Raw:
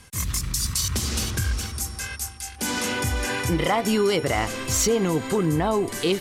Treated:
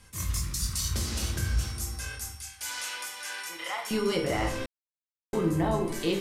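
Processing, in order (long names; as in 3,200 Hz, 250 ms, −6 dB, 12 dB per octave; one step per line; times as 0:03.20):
0:02.32–0:03.91: high-pass filter 1,200 Hz 12 dB per octave
convolution reverb RT60 0.65 s, pre-delay 6 ms, DRR 0.5 dB
0:04.66–0:05.33: silence
level −8.5 dB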